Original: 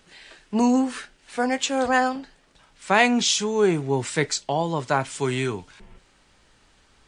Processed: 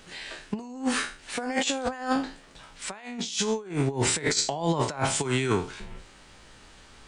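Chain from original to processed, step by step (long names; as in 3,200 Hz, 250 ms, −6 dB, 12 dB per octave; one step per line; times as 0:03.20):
peak hold with a decay on every bin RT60 0.37 s
compressor whose output falls as the input rises −27 dBFS, ratio −0.5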